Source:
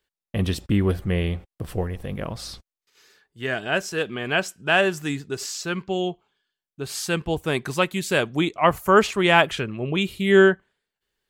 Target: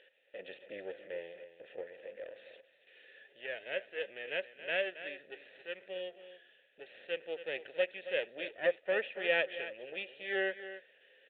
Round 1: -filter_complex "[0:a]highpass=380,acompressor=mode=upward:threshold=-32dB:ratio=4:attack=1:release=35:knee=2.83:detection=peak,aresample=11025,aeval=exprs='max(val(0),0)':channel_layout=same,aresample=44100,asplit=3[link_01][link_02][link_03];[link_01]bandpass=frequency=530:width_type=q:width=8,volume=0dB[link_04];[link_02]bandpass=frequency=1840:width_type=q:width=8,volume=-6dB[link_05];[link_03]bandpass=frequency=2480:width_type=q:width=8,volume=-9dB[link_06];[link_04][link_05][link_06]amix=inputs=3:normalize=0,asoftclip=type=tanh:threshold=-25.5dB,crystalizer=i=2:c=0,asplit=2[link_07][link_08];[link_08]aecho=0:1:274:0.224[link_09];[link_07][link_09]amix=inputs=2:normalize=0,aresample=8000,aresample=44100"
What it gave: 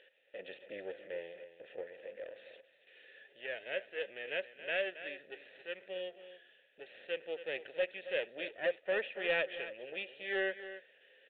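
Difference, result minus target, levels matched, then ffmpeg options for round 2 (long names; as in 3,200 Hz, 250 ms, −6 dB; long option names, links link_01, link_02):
soft clipping: distortion +14 dB
-filter_complex "[0:a]highpass=380,acompressor=mode=upward:threshold=-32dB:ratio=4:attack=1:release=35:knee=2.83:detection=peak,aresample=11025,aeval=exprs='max(val(0),0)':channel_layout=same,aresample=44100,asplit=3[link_01][link_02][link_03];[link_01]bandpass=frequency=530:width_type=q:width=8,volume=0dB[link_04];[link_02]bandpass=frequency=1840:width_type=q:width=8,volume=-6dB[link_05];[link_03]bandpass=frequency=2480:width_type=q:width=8,volume=-9dB[link_06];[link_04][link_05][link_06]amix=inputs=3:normalize=0,asoftclip=type=tanh:threshold=-16dB,crystalizer=i=2:c=0,asplit=2[link_07][link_08];[link_08]aecho=0:1:274:0.224[link_09];[link_07][link_09]amix=inputs=2:normalize=0,aresample=8000,aresample=44100"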